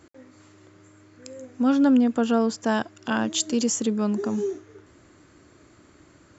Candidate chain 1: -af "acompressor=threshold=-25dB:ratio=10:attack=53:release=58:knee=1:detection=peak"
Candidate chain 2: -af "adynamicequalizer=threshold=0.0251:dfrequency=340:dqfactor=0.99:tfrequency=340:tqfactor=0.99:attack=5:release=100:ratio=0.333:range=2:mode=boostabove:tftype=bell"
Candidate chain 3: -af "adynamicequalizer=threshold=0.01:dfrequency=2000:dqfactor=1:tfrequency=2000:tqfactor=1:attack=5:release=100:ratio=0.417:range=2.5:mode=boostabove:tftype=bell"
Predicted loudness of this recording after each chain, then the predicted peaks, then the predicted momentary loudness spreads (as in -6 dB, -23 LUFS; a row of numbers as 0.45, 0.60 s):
-26.0, -21.0, -23.0 LUFS; -10.0, -8.5, -8.5 dBFS; 11, 10, 11 LU